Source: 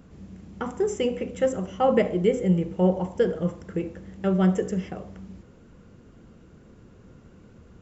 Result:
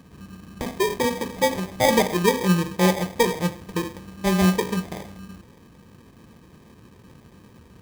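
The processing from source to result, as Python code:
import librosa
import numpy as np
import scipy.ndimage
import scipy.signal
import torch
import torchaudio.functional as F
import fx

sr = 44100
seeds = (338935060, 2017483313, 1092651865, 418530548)

y = scipy.signal.sosfilt(scipy.signal.butter(2, 66.0, 'highpass', fs=sr, output='sos'), x)
y = fx.sample_hold(y, sr, seeds[0], rate_hz=1400.0, jitter_pct=0)
y = y * 10.0 ** (2.0 / 20.0)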